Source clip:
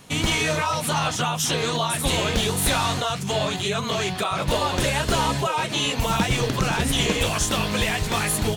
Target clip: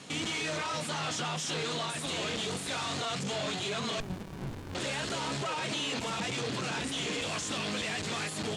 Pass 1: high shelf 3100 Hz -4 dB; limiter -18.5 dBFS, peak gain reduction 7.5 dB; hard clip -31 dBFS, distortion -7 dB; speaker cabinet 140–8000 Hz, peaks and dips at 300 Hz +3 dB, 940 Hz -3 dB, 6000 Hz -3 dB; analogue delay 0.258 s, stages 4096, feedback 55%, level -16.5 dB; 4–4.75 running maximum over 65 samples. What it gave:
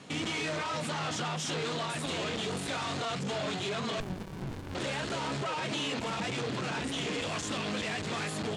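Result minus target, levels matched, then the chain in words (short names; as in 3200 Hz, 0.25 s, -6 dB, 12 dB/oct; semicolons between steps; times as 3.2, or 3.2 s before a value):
8000 Hz band -3.0 dB
high shelf 3100 Hz +4.5 dB; limiter -18.5 dBFS, peak gain reduction 10 dB; hard clip -31 dBFS, distortion -7 dB; speaker cabinet 140–8000 Hz, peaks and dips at 300 Hz +3 dB, 940 Hz -3 dB, 6000 Hz -3 dB; analogue delay 0.258 s, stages 4096, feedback 55%, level -16.5 dB; 4–4.75 running maximum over 65 samples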